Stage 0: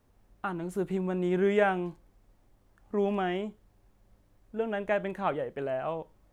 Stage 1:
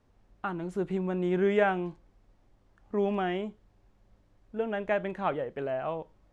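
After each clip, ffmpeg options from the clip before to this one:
-af "lowpass=6100"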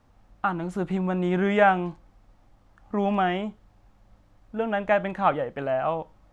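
-af "equalizer=f=400:t=o:w=0.33:g=-8,equalizer=f=800:t=o:w=0.33:g=4,equalizer=f=1250:t=o:w=0.33:g=4,volume=2"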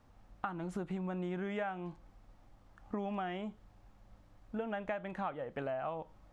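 -af "acompressor=threshold=0.0251:ratio=8,volume=0.708"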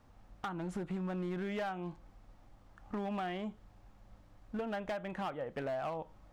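-af "asoftclip=type=hard:threshold=0.02,volume=1.19"

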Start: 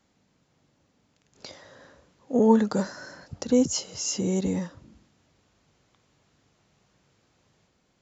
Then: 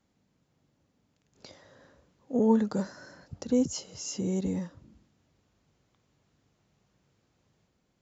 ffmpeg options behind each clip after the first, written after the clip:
-af "lowshelf=f=430:g=5.5,volume=0.398"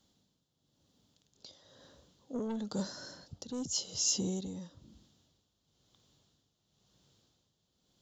-af "asoftclip=type=tanh:threshold=0.0794,highshelf=f=2800:t=q:w=3:g=6.5,tremolo=f=0.99:d=0.71"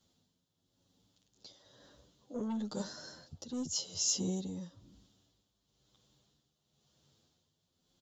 -filter_complex "[0:a]asplit=2[s0][s1];[s1]adelay=9.1,afreqshift=0.26[s2];[s0][s2]amix=inputs=2:normalize=1,volume=1.19"

